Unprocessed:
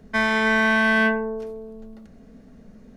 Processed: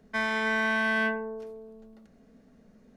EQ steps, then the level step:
low-shelf EQ 150 Hz −8.5 dB
−7.0 dB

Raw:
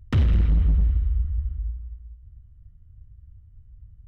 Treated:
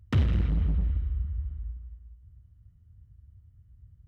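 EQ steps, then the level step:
high-pass filter 68 Hz
−2.0 dB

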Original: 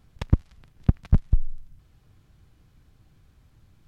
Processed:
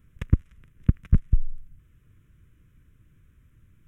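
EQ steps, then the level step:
phaser with its sweep stopped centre 1,900 Hz, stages 4
0.0 dB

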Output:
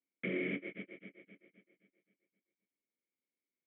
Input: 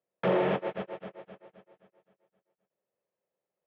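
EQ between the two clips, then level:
formant filter i
high-frequency loss of the air 330 metres
parametric band 2,200 Hz +11.5 dB 0.26 octaves
+6.5 dB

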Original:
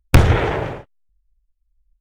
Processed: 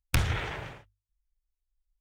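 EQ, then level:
guitar amp tone stack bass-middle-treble 5-5-5
mains-hum notches 50/100 Hz
0.0 dB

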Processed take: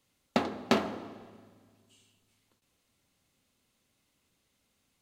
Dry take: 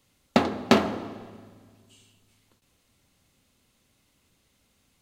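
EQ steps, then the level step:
low-shelf EQ 120 Hz −6 dB
−6.5 dB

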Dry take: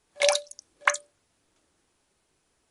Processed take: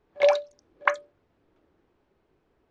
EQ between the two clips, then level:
head-to-tape spacing loss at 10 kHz 40 dB
parametric band 390 Hz +4.5 dB 0.82 octaves
+5.5 dB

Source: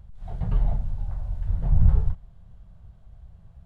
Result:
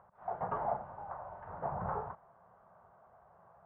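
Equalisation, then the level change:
high-pass filter 920 Hz 12 dB per octave
low-pass filter 1,200 Hz 24 dB per octave
+15.0 dB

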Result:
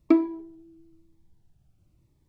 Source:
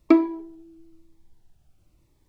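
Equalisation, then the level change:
parametric band 130 Hz +10 dB 2.2 octaves
−7.0 dB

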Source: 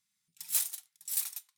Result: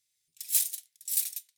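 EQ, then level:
parametric band 820 Hz −10 dB 0.57 octaves
phaser with its sweep stopped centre 480 Hz, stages 4
+4.0 dB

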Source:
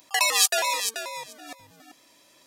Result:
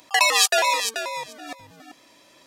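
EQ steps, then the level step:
high-shelf EQ 6,300 Hz −10 dB
+6.0 dB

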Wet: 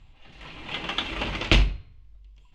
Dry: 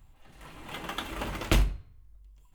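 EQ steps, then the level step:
high-frequency loss of the air 210 metres
flat-topped bell 5,000 Hz +11 dB 2.6 octaves
+4.0 dB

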